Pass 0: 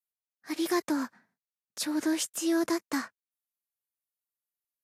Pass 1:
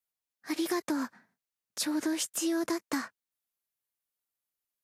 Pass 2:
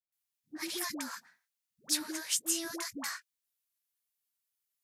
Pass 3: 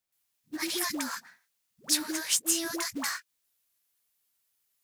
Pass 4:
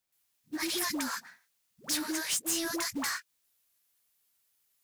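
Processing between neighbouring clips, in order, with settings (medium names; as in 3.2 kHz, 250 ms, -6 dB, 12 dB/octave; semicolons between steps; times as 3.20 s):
compression, threshold -30 dBFS, peak gain reduction 7 dB; trim +2.5 dB
amplifier tone stack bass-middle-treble 5-5-5; phase dispersion highs, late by 124 ms, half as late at 490 Hz; trim +9 dB
in parallel at -1.5 dB: compression 6:1, threshold -44 dBFS, peak gain reduction 17.5 dB; on the sum: short-mantissa float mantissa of 2-bit; trim +3.5 dB
saturation -28.5 dBFS, distortion -8 dB; trim +2 dB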